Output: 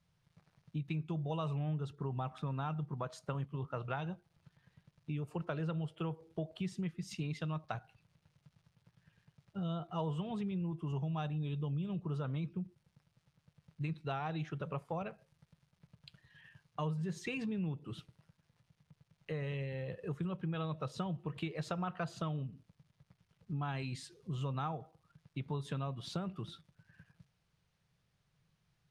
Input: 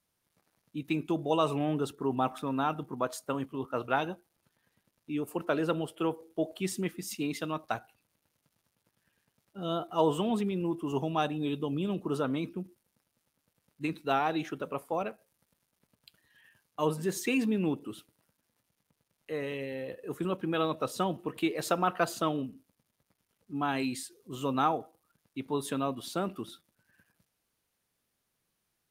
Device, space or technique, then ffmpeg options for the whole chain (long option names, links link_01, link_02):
jukebox: -af "lowpass=5200,lowshelf=frequency=200:width_type=q:width=3:gain=8,acompressor=threshold=-39dB:ratio=4,volume=1.5dB"